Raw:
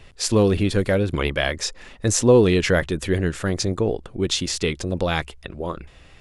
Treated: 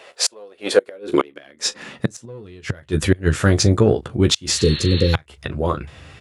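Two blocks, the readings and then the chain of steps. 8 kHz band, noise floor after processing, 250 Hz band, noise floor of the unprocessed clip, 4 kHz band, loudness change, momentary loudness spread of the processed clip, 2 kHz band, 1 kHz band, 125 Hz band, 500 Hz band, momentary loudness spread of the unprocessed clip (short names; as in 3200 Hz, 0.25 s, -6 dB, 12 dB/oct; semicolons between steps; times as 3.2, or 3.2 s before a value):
+2.0 dB, -53 dBFS, +1.0 dB, -48 dBFS, +4.0 dB, +1.5 dB, 15 LU, -1.0 dB, +1.0 dB, +3.5 dB, -0.5 dB, 14 LU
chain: bell 1400 Hz +3 dB 0.54 oct; early reflections 14 ms -7.5 dB, 39 ms -17.5 dB; in parallel at -4 dB: soft clip -13 dBFS, distortion -12 dB; on the sum: spectral repair 4.6–5.12, 550–4400 Hz before; flipped gate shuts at -7 dBFS, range -30 dB; high-pass sweep 570 Hz -> 97 Hz, 0.66–2.46; gain +1.5 dB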